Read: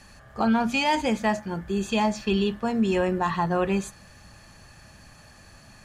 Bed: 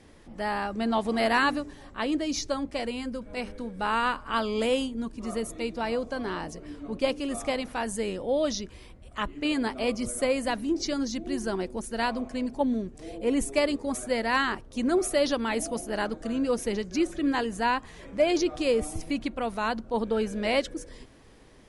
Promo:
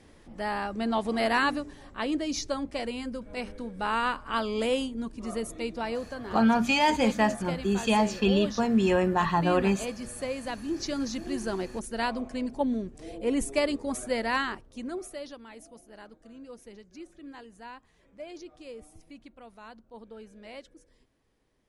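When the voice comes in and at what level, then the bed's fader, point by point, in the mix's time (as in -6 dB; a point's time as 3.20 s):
5.95 s, 0.0 dB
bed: 5.77 s -1.5 dB
6.31 s -7.5 dB
10.37 s -7.5 dB
11.03 s -1.5 dB
14.28 s -1.5 dB
15.45 s -19 dB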